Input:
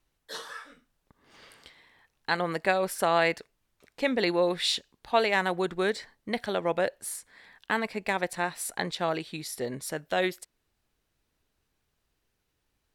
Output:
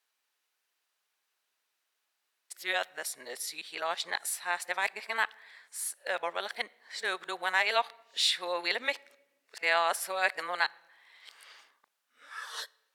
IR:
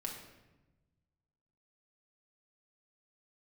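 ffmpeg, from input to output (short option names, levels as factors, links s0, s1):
-filter_complex "[0:a]areverse,highpass=920,asplit=2[s0][s1];[1:a]atrim=start_sample=2205[s2];[s1][s2]afir=irnorm=-1:irlink=0,volume=0.119[s3];[s0][s3]amix=inputs=2:normalize=0"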